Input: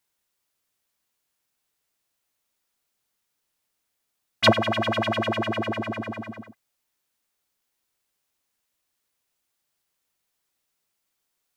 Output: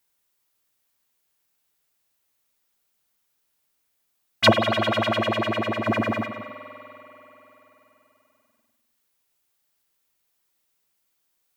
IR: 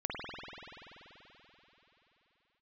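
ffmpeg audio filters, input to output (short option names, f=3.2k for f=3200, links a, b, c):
-filter_complex "[0:a]asettb=1/sr,asplit=3[a][b][c];[a]atrim=end=4.644[d];[b]atrim=start=4.64:end=5.19,asetpts=PTS-STARTPTS,afade=t=in:d=0.004:c=qsin,afade=t=out:st=0.546:d=0.004:c=qsin,aeval=exprs='val(0)+0.00891*sin(2*PI*1400*n/s)':c=same[e];[c]atrim=start=5.186[f];[d][e]acrossfade=d=0.004:c1=hsin:c2=qsin[g];[g][f]acrossfade=d=0.004:c1=qsin:c2=hsin,asettb=1/sr,asplit=3[h][i][j];[h]atrim=end=5.864[k];[i]atrim=start=5.86:end=6.26,asetpts=PTS-STARTPTS,afade=t=in:d=0.004:c=qsin,afade=t=out:st=0.396:d=0.004:c=qsin,acontrast=69[l];[j]atrim=start=6.256[m];[k][l]acrossfade=d=0.004:c1=hsin:c2=qsin[n];[n][m]acrossfade=d=0.004:c1=qsin:c2=hsin,asplit=2[o][p];[p]aemphasis=mode=production:type=50fm[q];[1:a]atrim=start_sample=2205[r];[q][r]afir=irnorm=-1:irlink=0,volume=-13.5dB[s];[o][s]amix=inputs=2:normalize=0"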